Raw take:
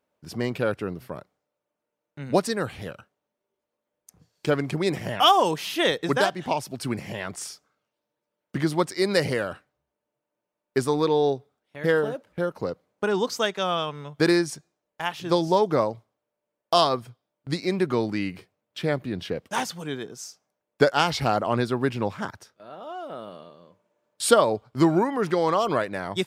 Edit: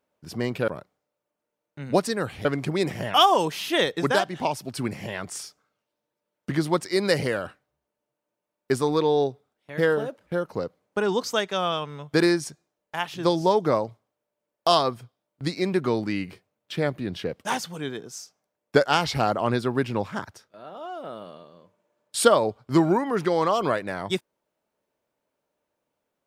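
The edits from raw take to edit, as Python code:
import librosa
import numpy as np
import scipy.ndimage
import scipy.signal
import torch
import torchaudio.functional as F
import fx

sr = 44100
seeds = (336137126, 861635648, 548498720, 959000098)

y = fx.edit(x, sr, fx.cut(start_s=0.68, length_s=0.4),
    fx.cut(start_s=2.85, length_s=1.66), tone=tone)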